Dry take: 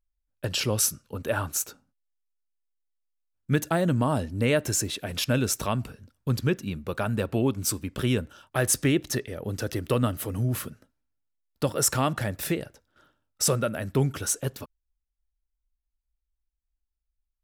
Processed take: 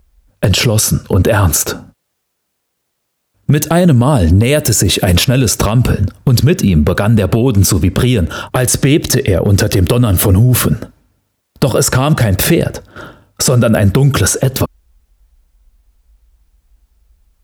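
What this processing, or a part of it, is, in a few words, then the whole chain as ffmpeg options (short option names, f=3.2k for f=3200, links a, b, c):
mastering chain: -filter_complex "[0:a]asettb=1/sr,asplit=3[a][b][c];[a]atrim=end=4.444[d];[b]atrim=start=4.44:end=5.14,asetpts=PTS-STARTPTS,afade=t=in:d=0.004:c=qsin,afade=t=out:st=0.696:d=0.004:c=qsin,highshelf=f=6.2k:g=11[e];[c]atrim=start=5.136[f];[d][e]acrossfade=d=0.004:c1=hsin:c2=qsin[g];[g][f]acrossfade=d=0.004:c1=qsin:c2=hsin,highpass=44,equalizer=f=280:t=o:w=0.34:g=-4,acrossover=split=2600|6900[h][i][j];[h]acompressor=threshold=-32dB:ratio=4[k];[i]acompressor=threshold=-33dB:ratio=4[l];[j]acompressor=threshold=-34dB:ratio=4[m];[k][l][m]amix=inputs=3:normalize=0,acompressor=threshold=-36dB:ratio=2.5,tiltshelf=f=860:g=5,asoftclip=type=hard:threshold=-24.5dB,alimiter=level_in=32dB:limit=-1dB:release=50:level=0:latency=1,volume=-1dB"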